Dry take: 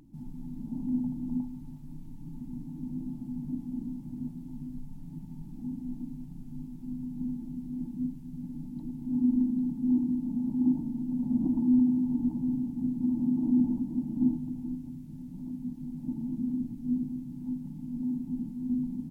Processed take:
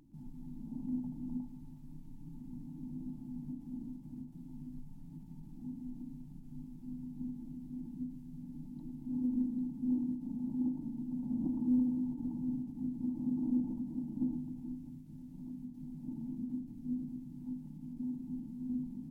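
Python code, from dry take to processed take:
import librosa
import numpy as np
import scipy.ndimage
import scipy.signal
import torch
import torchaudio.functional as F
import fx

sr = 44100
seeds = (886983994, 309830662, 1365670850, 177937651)

y = fx.tracing_dist(x, sr, depth_ms=0.031)
y = fx.hum_notches(y, sr, base_hz=60, count=4)
y = y + 10.0 ** (-17.5 / 20.0) * np.pad(y, (int(118 * sr / 1000.0), 0))[:len(y)]
y = fx.end_taper(y, sr, db_per_s=110.0)
y = y * librosa.db_to_amplitude(-6.0)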